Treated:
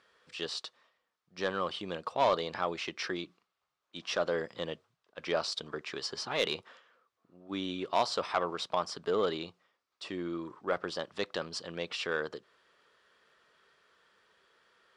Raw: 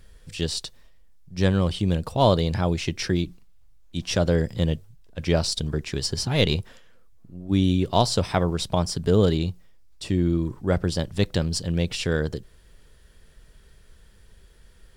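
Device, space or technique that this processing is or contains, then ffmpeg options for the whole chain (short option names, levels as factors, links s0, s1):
intercom: -af "highpass=460,lowpass=4300,equalizer=f=1200:t=o:w=0.49:g=9,asoftclip=type=tanh:threshold=0.211,volume=0.596"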